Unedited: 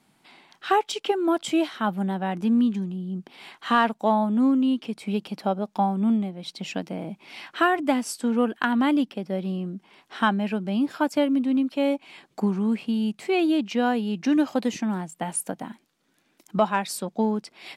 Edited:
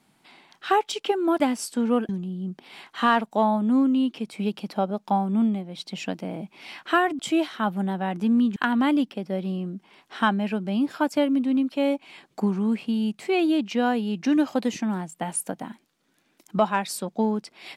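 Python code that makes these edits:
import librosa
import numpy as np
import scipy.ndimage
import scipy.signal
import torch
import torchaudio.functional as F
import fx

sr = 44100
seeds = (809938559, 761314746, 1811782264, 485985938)

y = fx.edit(x, sr, fx.swap(start_s=1.4, length_s=1.37, other_s=7.87, other_length_s=0.69), tone=tone)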